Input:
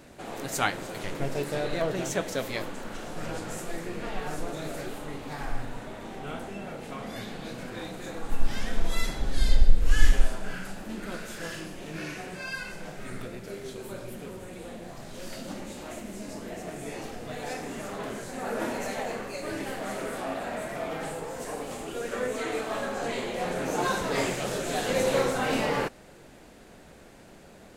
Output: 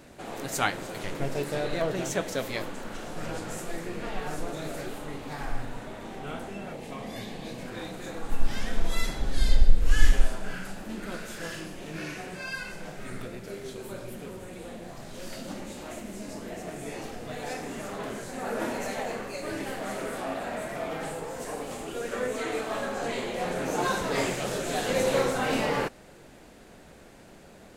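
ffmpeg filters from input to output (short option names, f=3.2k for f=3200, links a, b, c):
-filter_complex "[0:a]asettb=1/sr,asplit=3[a][b][c];[a]atrim=end=6.734[d];[b]atrim=start=6.73:end=7.66,asetpts=PTS-STARTPTS,afade=t=in:d=0.004:c=qsin,afade=t=out:st=0.926:d=0.004:c=qsin,equalizer=f=1.4k:t=o:w=0.21:g=-14[e];[c]atrim=start=7.656[f];[d][e]acrossfade=d=0.004:c1=hsin:c2=qsin[g];[g][f]acrossfade=d=0.004:c1=qsin:c2=hsin"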